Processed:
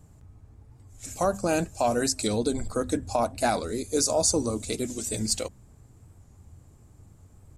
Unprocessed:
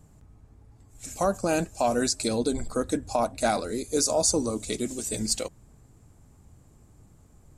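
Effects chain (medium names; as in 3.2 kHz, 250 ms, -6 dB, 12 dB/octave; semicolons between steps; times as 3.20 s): peaking EQ 91 Hz +8 dB 0.6 oct; hum notches 50/100/150/200/250 Hz; warped record 45 rpm, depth 100 cents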